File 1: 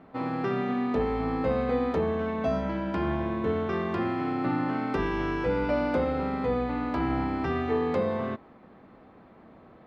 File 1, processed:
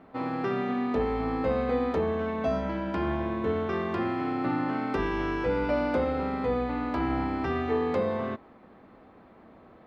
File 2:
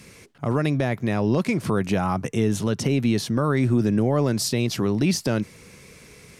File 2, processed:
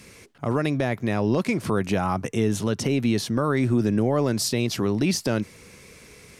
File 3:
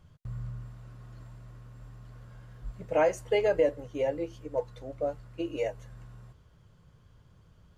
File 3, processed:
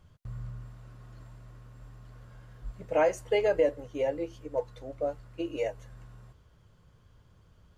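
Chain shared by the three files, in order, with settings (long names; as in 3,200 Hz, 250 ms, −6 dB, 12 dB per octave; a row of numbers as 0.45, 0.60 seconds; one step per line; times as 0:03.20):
parametric band 150 Hz −4 dB 0.75 octaves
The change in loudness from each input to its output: −0.5, −1.0, 0.0 LU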